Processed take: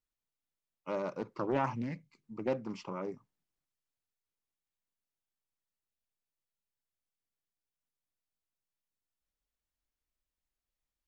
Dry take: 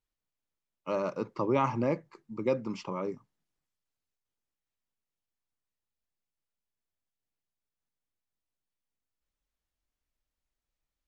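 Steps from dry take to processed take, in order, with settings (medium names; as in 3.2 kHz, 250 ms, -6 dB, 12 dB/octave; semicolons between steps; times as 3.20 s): time-frequency box 1.74–2.23 s, 290–2000 Hz -16 dB; loudspeaker Doppler distortion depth 0.31 ms; trim -4.5 dB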